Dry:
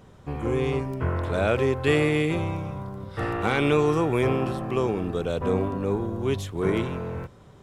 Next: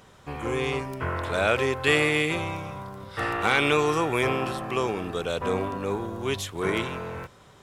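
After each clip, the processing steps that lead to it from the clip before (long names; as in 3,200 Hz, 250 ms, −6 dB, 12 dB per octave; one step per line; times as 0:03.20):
tilt shelving filter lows −6.5 dB, about 640 Hz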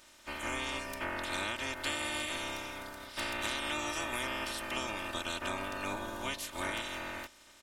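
ceiling on every frequency bin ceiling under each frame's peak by 23 dB
comb filter 3.3 ms, depth 71%
downward compressor 5 to 1, threshold −25 dBFS, peak gain reduction 9.5 dB
level −7.5 dB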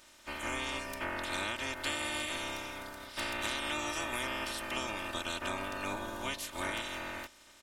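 no processing that can be heard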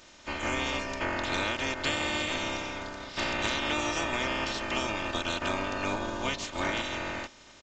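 in parallel at −9.5 dB: decimation without filtering 23×
on the sum: downsampling to 16,000 Hz
level +5 dB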